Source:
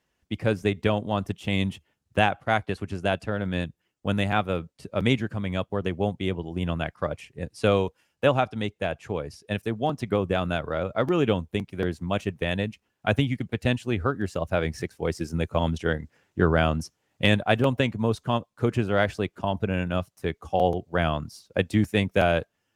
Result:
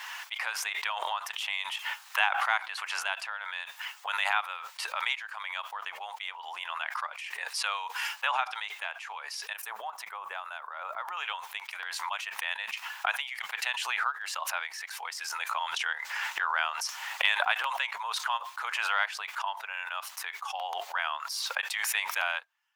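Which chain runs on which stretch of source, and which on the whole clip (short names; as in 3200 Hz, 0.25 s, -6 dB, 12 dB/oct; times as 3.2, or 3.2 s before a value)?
9.53–11.17 bell 3600 Hz -11 dB 2.7 oct + three-band expander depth 40%
whole clip: elliptic high-pass 900 Hz, stop band 70 dB; bell 8800 Hz -7 dB 1.7 oct; backwards sustainer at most 22 dB/s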